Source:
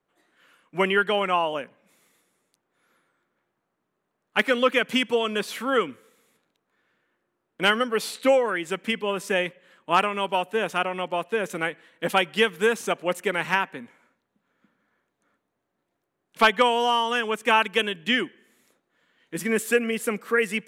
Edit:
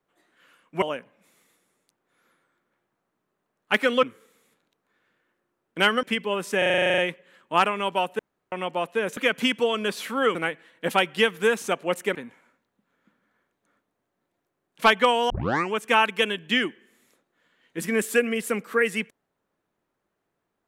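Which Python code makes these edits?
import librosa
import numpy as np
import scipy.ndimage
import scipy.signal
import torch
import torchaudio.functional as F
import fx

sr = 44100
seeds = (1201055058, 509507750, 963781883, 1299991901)

y = fx.edit(x, sr, fx.cut(start_s=0.82, length_s=0.65),
    fx.move(start_s=4.68, length_s=1.18, to_s=11.54),
    fx.cut(start_s=7.86, length_s=0.94),
    fx.stutter(start_s=9.35, slice_s=0.04, count=11),
    fx.room_tone_fill(start_s=10.56, length_s=0.33),
    fx.cut(start_s=13.34, length_s=0.38),
    fx.tape_start(start_s=16.87, length_s=0.43), tone=tone)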